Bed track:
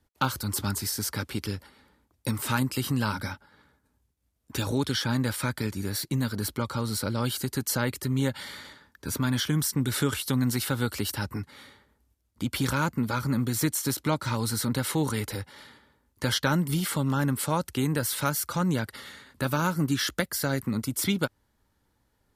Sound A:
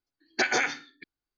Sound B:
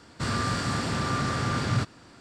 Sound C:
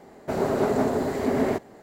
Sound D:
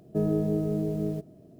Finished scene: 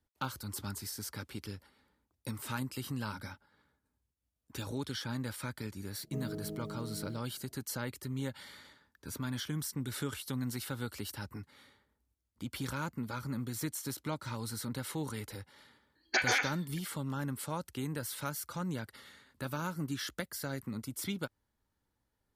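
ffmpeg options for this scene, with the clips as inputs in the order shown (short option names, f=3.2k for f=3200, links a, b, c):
-filter_complex "[0:a]volume=-11dB[a];[1:a]highpass=f=610:p=1[b];[4:a]atrim=end=1.59,asetpts=PTS-STARTPTS,volume=-15.5dB,afade=t=in:d=0.004:c=hsin,afade=t=out:st=1.586:d=0.004:c=hsin,adelay=5980[c];[b]atrim=end=1.37,asetpts=PTS-STARTPTS,volume=-3dB,afade=t=in:d=0.004:c=hsin,afade=t=out:st=1.366:d=0.004:c=hsin,adelay=15750[d];[a][c][d]amix=inputs=3:normalize=0"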